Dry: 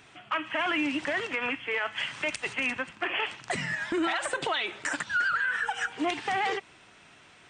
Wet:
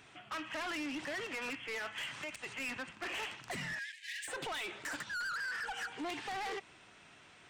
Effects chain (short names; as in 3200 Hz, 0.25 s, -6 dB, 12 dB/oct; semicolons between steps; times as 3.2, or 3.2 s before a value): 2.09–2.6 compressor 6:1, threshold -32 dBFS, peak gain reduction 7 dB; soft clip -32.5 dBFS, distortion -8 dB; 3.79–4.28 brick-wall FIR high-pass 1600 Hz; gain -4 dB